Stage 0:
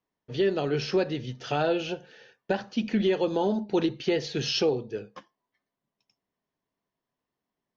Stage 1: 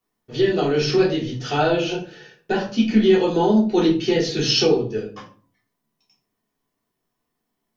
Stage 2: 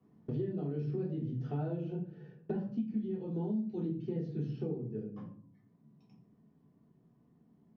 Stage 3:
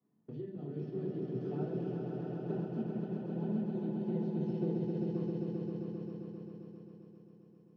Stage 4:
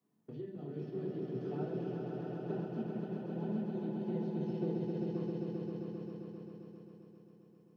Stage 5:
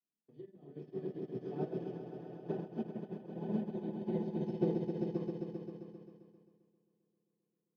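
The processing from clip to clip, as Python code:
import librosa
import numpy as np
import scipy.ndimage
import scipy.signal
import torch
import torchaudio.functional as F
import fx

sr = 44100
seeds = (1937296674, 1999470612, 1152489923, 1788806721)

y1 = fx.high_shelf(x, sr, hz=5900.0, db=9.5)
y1 = fx.room_shoebox(y1, sr, seeds[0], volume_m3=270.0, walls='furnished', distance_m=3.4)
y2 = fx.rider(y1, sr, range_db=4, speed_s=0.5)
y2 = fx.bandpass_q(y2, sr, hz=160.0, q=2.0)
y2 = fx.band_squash(y2, sr, depth_pct=100)
y2 = F.gain(torch.from_numpy(y2), -8.5).numpy()
y3 = scipy.signal.sosfilt(scipy.signal.butter(2, 130.0, 'highpass', fs=sr, output='sos'), y2)
y3 = fx.echo_swell(y3, sr, ms=132, loudest=5, wet_db=-4.0)
y3 = fx.upward_expand(y3, sr, threshold_db=-45.0, expansion=1.5)
y3 = F.gain(torch.from_numpy(y3), -3.0).numpy()
y4 = fx.low_shelf(y3, sr, hz=420.0, db=-6.0)
y4 = F.gain(torch.from_numpy(y4), 2.5).numpy()
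y5 = fx.notch_comb(y4, sr, f0_hz=1400.0)
y5 = fx.upward_expand(y5, sr, threshold_db=-53.0, expansion=2.5)
y5 = F.gain(torch.from_numpy(y5), 7.0).numpy()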